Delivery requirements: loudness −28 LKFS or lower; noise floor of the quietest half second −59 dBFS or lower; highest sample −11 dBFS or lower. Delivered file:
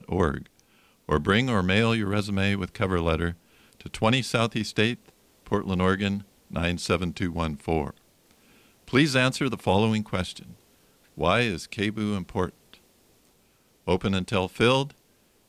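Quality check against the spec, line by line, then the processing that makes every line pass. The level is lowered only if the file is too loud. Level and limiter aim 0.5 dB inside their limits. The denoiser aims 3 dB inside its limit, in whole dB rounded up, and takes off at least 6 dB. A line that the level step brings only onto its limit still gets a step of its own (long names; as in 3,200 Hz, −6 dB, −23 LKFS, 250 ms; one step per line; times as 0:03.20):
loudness −25.5 LKFS: out of spec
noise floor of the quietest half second −63 dBFS: in spec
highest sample −8.0 dBFS: out of spec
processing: level −3 dB
brickwall limiter −11.5 dBFS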